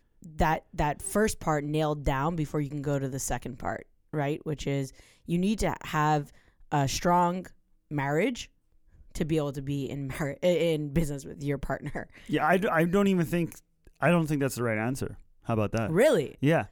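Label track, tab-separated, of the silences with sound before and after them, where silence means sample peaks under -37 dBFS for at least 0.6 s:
8.440000	9.150000	silence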